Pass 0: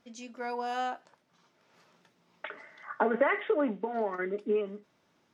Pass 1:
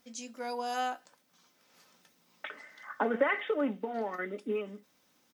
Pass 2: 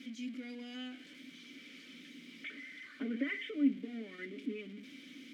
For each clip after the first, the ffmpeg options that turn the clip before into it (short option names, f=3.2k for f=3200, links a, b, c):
-af "aemphasis=mode=production:type=75fm,aecho=1:1:3.9:0.38,volume=-2.5dB"
-filter_complex "[0:a]aeval=exprs='val(0)+0.5*0.0141*sgn(val(0))':c=same,asplit=3[a][b][c];[a]bandpass=f=270:t=q:w=8,volume=0dB[d];[b]bandpass=f=2.29k:t=q:w=8,volume=-6dB[e];[c]bandpass=f=3.01k:t=q:w=8,volume=-9dB[f];[d][e][f]amix=inputs=3:normalize=0,volume=4.5dB"